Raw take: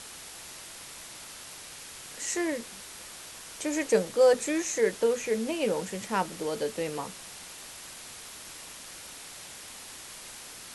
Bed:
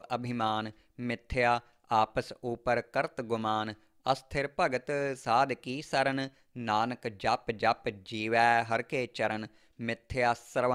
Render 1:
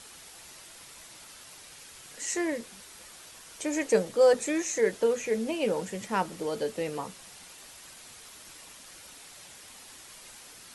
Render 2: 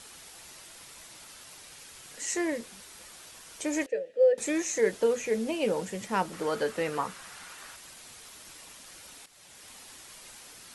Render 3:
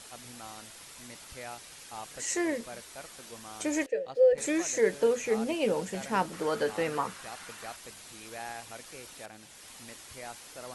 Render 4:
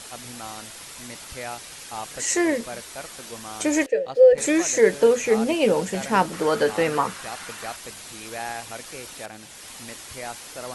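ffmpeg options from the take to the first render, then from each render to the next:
-af "afftdn=nr=6:nf=-45"
-filter_complex "[0:a]asettb=1/sr,asplit=3[s0][s1][s2];[s0]atrim=end=3.864[s3];[s1]atrim=start=3.86:end=4.38,asetpts=PTS-STARTPTS,afade=t=in:d=0.004:c=qsin,afade=t=out:st=0.516:d=0.004:c=qsin,asplit=3[s4][s5][s6];[s4]bandpass=f=530:t=q:w=8,volume=1[s7];[s5]bandpass=f=1840:t=q:w=8,volume=0.501[s8];[s6]bandpass=f=2480:t=q:w=8,volume=0.355[s9];[s7][s8][s9]amix=inputs=3:normalize=0[s10];[s2]atrim=start=4.376[s11];[s3][s10]acrossfade=d=0.004:c1=hsin:c2=qsin[s12];[s12][s11]acrossfade=d=0.004:c1=qsin:c2=hsin,asettb=1/sr,asplit=3[s13][s14][s15];[s13]atrim=end=6.334[s16];[s14]atrim=start=6.33:end=7.76,asetpts=PTS-STARTPTS,afade=t=in:d=0.004:c=qsin,afade=t=out:st=1.426:d=0.004:c=qsin,equalizer=f=1400:t=o:w=1.2:g=11[s17];[s15]atrim=start=7.756[s18];[s16][s17]acrossfade=d=0.004:c1=hsin:c2=qsin[s19];[s19][s18]acrossfade=d=0.004:c1=qsin:c2=hsin,asplit=2[s20][s21];[s20]atrim=end=9.26,asetpts=PTS-STARTPTS,afade=t=out:st=9.256:d=0.004:c=hsin:silence=0.237137[s22];[s21]atrim=start=9.26,asetpts=PTS-STARTPTS,afade=t=in:d=0.43:silence=0.237137[s23];[s22][s23]concat=n=2:v=0:a=1"
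-filter_complex "[1:a]volume=0.15[s0];[0:a][s0]amix=inputs=2:normalize=0"
-af "volume=2.66"

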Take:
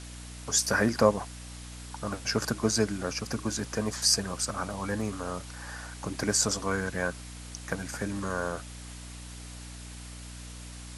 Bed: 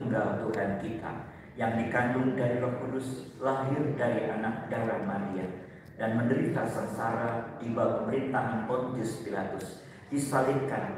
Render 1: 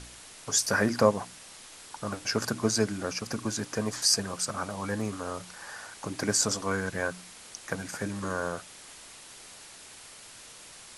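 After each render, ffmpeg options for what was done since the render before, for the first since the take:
-af "bandreject=f=60:t=h:w=4,bandreject=f=120:t=h:w=4,bandreject=f=180:t=h:w=4,bandreject=f=240:t=h:w=4,bandreject=f=300:t=h:w=4"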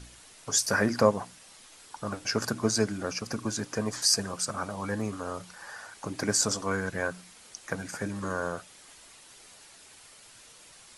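-af "afftdn=nr=6:nf=-49"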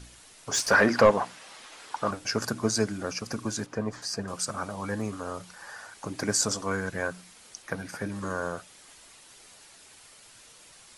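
-filter_complex "[0:a]asettb=1/sr,asplit=3[s0][s1][s2];[s0]atrim=end=0.514[s3];[s1]atrim=start=0.51:end=2.11,asetpts=PTS-STARTPTS,afade=t=in:d=0.004:c=qsin,afade=t=out:st=1.596:d=0.004:c=qsin,asplit=2[s4][s5];[s5]highpass=f=720:p=1,volume=7.94,asoftclip=type=tanh:threshold=0.447[s6];[s4][s6]amix=inputs=2:normalize=0,lowpass=f=1800:p=1,volume=0.501[s7];[s2]atrim=start=2.106[s8];[s3][s7]acrossfade=d=0.004:c1=hsin:c2=qsin[s9];[s9][s8]acrossfade=d=0.004:c1=qsin:c2=hsin,asettb=1/sr,asplit=3[s10][s11][s12];[s10]atrim=end=3.664[s13];[s11]atrim=start=3.66:end=4.28,asetpts=PTS-STARTPTS,afade=t=in:d=0.004:c=qsin,afade=t=out:st=0.616:d=0.004:c=qsin,lowpass=f=1600:p=1[s14];[s12]atrim=start=4.276[s15];[s13][s14]acrossfade=d=0.004:c1=hsin:c2=qsin[s16];[s16][s15]acrossfade=d=0.004:c1=qsin:c2=hsin,asettb=1/sr,asplit=3[s17][s18][s19];[s17]atrim=end=7.624[s20];[s18]atrim=start=7.62:end=8.12,asetpts=PTS-STARTPTS,afade=t=in:d=0.004:c=qsin,afade=t=out:st=0.496:d=0.004:c=qsin,equalizer=f=7300:w=2.9:g=-9[s21];[s19]atrim=start=8.116[s22];[s20][s21]acrossfade=d=0.004:c1=hsin:c2=qsin[s23];[s23][s22]acrossfade=d=0.004:c1=qsin:c2=hsin"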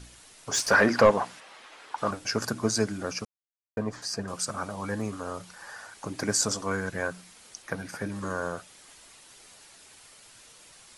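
-filter_complex "[0:a]asettb=1/sr,asplit=3[s0][s1][s2];[s0]atrim=end=1.404[s3];[s1]atrim=start=1.4:end=1.98,asetpts=PTS-STARTPTS,afade=t=in:d=0.004:c=qsin,afade=t=out:st=0.576:d=0.004:c=qsin,bass=f=250:g=-7,treble=f=4000:g=-9[s4];[s2]atrim=start=1.976[s5];[s3][s4]acrossfade=d=0.004:c1=hsin:c2=qsin[s6];[s6][s5]acrossfade=d=0.004:c1=qsin:c2=hsin,asplit=3[s7][s8][s9];[s7]atrim=end=3.25,asetpts=PTS-STARTPTS,afade=t=out:st=3.246:d=0.004:c=hsin[s10];[s8]atrim=start=3.25:end=3.77,asetpts=PTS-STARTPTS,volume=0[s11];[s9]atrim=start=3.77,asetpts=PTS-STARTPTS,afade=t=in:d=0.004:c=hsin[s12];[s10][s11][s12]concat=n=3:v=0:a=1"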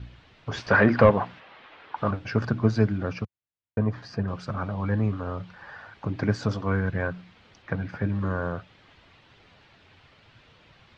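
-af "lowpass=f=3500:w=0.5412,lowpass=f=3500:w=1.3066,equalizer=f=98:t=o:w=1.9:g=13"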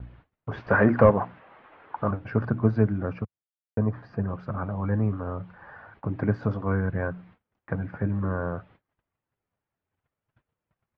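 -af "agate=range=0.0355:threshold=0.00282:ratio=16:detection=peak,lowpass=1500"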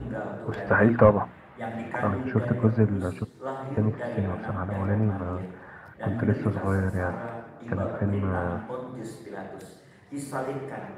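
-filter_complex "[1:a]volume=0.596[s0];[0:a][s0]amix=inputs=2:normalize=0"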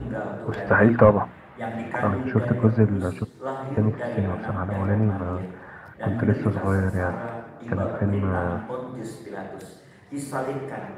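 -af "volume=1.41,alimiter=limit=0.794:level=0:latency=1"

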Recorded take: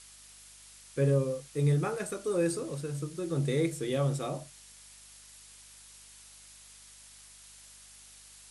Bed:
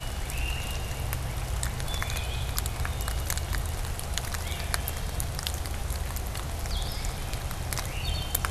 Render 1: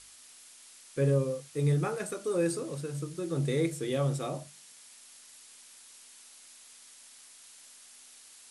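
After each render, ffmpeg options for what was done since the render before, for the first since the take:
-af "bandreject=f=50:t=h:w=4,bandreject=f=100:t=h:w=4,bandreject=f=150:t=h:w=4,bandreject=f=200:t=h:w=4"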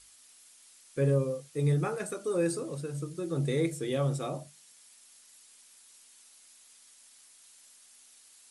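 -af "afftdn=nr=6:nf=-54"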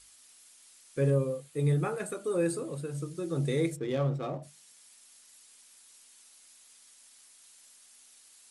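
-filter_complex "[0:a]asettb=1/sr,asplit=3[s0][s1][s2];[s0]atrim=end=1.104[s3];[s1]atrim=start=1.1:end=2.92,asetpts=PTS-STARTPTS,afade=t=in:d=0.004:c=qsin,afade=t=out:st=1.816:d=0.004:c=qsin,equalizer=f=5600:t=o:w=0.43:g=-8[s4];[s2]atrim=start=2.916[s5];[s3][s4]acrossfade=d=0.004:c1=hsin:c2=qsin[s6];[s6][s5]acrossfade=d=0.004:c1=qsin:c2=hsin,asplit=3[s7][s8][s9];[s7]afade=t=out:st=3.75:d=0.02[s10];[s8]adynamicsmooth=sensitivity=7:basefreq=1500,afade=t=in:st=3.75:d=0.02,afade=t=out:st=4.42:d=0.02[s11];[s9]afade=t=in:st=4.42:d=0.02[s12];[s10][s11][s12]amix=inputs=3:normalize=0"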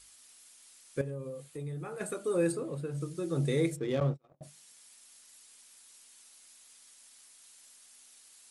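-filter_complex "[0:a]asettb=1/sr,asplit=3[s0][s1][s2];[s0]atrim=end=1.014[s3];[s1]atrim=start=1.01:end=2.01,asetpts=PTS-STARTPTS,afade=t=in:d=0.004:c=qsin,afade=t=out:st=0.996:d=0.004:c=qsin,acompressor=threshold=0.0126:ratio=4:attack=3.2:release=140:knee=1:detection=peak[s4];[s2]atrim=start=2.006[s5];[s3][s4]acrossfade=d=0.004:c1=hsin:c2=qsin[s6];[s6][s5]acrossfade=d=0.004:c1=qsin:c2=hsin,asettb=1/sr,asplit=3[s7][s8][s9];[s7]atrim=end=2.524[s10];[s8]atrim=start=2.52:end=3.01,asetpts=PTS-STARTPTS,afade=t=in:d=0.004:c=qsin,afade=t=out:st=0.486:d=0.004:c=qsin,equalizer=f=9500:w=0.37:g=-8[s11];[s9]atrim=start=3.006[s12];[s10][s11]acrossfade=d=0.004:c1=hsin:c2=qsin[s13];[s13][s12]acrossfade=d=0.004:c1=qsin:c2=hsin,asettb=1/sr,asplit=3[s14][s15][s16];[s14]atrim=end=4.004[s17];[s15]atrim=start=4:end=4.41,asetpts=PTS-STARTPTS,afade=t=in:d=0.004:c=qsin,afade=t=out:st=0.406:d=0.004:c=qsin,agate=range=0.00794:threshold=0.0282:ratio=16:release=100:detection=peak[s18];[s16]atrim=start=4.406[s19];[s17][s18]acrossfade=d=0.004:c1=hsin:c2=qsin[s20];[s20][s19]acrossfade=d=0.004:c1=qsin:c2=hsin"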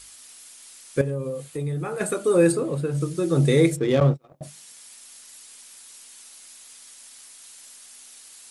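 -af "volume=3.55"

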